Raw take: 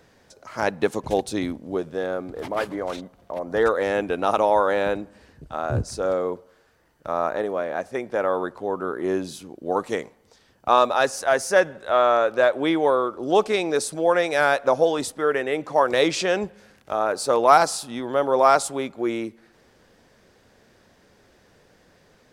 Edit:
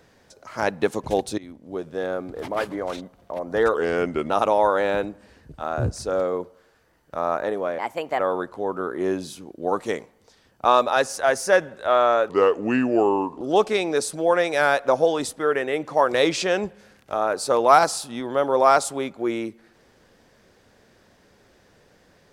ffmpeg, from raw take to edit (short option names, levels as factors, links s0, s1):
-filter_complex "[0:a]asplit=8[s0][s1][s2][s3][s4][s5][s6][s7];[s0]atrim=end=1.38,asetpts=PTS-STARTPTS,afade=t=out:st=1.376:d=0.004:c=hsin:silence=0.0891251[s8];[s1]atrim=start=1.38:end=3.744,asetpts=PTS-STARTPTS,afade=t=in:d=0.67:silence=0.0891251[s9];[s2]atrim=start=3.74:end=4.22,asetpts=PTS-STARTPTS,asetrate=37926,aresample=44100[s10];[s3]atrim=start=4.216:end=7.714[s11];[s4]atrim=start=7.71:end=8.23,asetpts=PTS-STARTPTS,asetrate=56448,aresample=44100[s12];[s5]atrim=start=8.226:end=12.334[s13];[s6]atrim=start=12.33:end=13.2,asetpts=PTS-STARTPTS,asetrate=34398,aresample=44100,atrim=end_sample=49188,asetpts=PTS-STARTPTS[s14];[s7]atrim=start=13.196[s15];[s8][s9]concat=n=2:v=0:a=1[s16];[s16][s10]acrossfade=d=0.004:c1=hsin:c2=hsin[s17];[s17][s11]acrossfade=d=0.004:c1=hsin:c2=hsin[s18];[s18][s12]acrossfade=d=0.004:c1=hsin:c2=hsin[s19];[s19][s13]acrossfade=d=0.004:c1=hsin:c2=hsin[s20];[s20][s14]acrossfade=d=0.004:c1=hsin:c2=hsin[s21];[s21][s15]acrossfade=d=0.004:c1=hsin:c2=hsin"